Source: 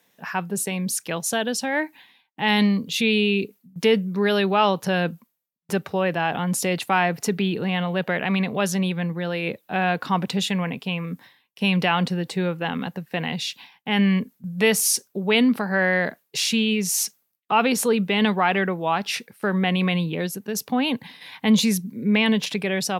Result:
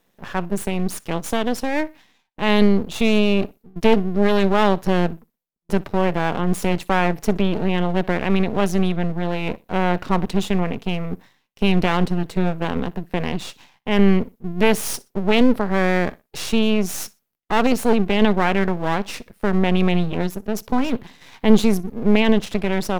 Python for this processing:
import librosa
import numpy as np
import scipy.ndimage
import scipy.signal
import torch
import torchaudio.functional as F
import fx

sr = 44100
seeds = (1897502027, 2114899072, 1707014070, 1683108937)

y = fx.tilt_shelf(x, sr, db=5.5, hz=860.0)
y = fx.echo_feedback(y, sr, ms=61, feedback_pct=27, wet_db=-23)
y = np.maximum(y, 0.0)
y = F.gain(torch.from_numpy(y), 3.5).numpy()